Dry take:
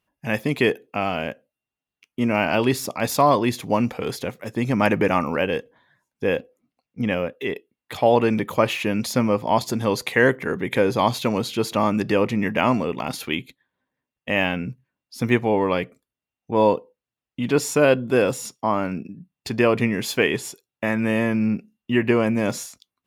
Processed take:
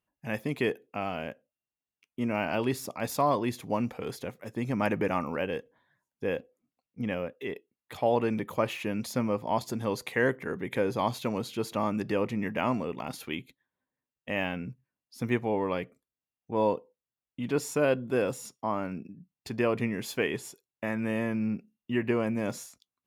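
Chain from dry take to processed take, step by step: peaking EQ 3.9 kHz -3 dB 1.9 oct; trim -8.5 dB

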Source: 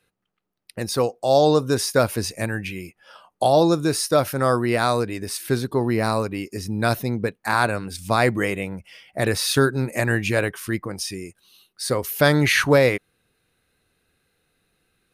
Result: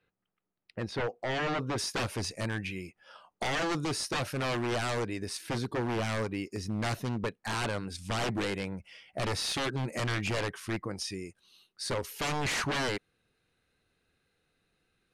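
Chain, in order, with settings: wavefolder -19.5 dBFS; low-pass 3.1 kHz 12 dB/octave, from 1.78 s 7.7 kHz; trim -6 dB

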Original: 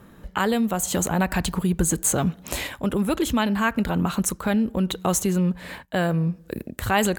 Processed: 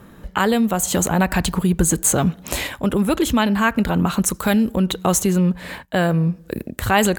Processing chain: 4.34–4.76 s: treble shelf 4.5 kHz +11.5 dB; trim +4.5 dB

